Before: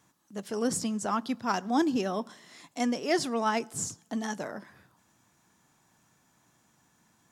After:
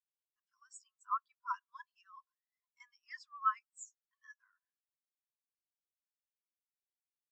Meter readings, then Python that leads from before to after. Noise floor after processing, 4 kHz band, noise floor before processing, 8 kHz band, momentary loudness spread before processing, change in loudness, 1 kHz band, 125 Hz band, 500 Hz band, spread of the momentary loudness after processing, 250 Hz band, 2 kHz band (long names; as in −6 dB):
below −85 dBFS, −26.0 dB, −68 dBFS, −19.5 dB, 16 LU, −9.5 dB, −7.5 dB, below −40 dB, below −40 dB, 24 LU, below −40 dB, −13.0 dB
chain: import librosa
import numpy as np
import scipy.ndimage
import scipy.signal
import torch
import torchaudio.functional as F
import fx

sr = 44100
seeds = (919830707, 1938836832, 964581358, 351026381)

y = fx.block_float(x, sr, bits=5)
y = fx.brickwall_bandpass(y, sr, low_hz=950.0, high_hz=8600.0)
y = fx.spectral_expand(y, sr, expansion=2.5)
y = y * librosa.db_to_amplitude(-4.5)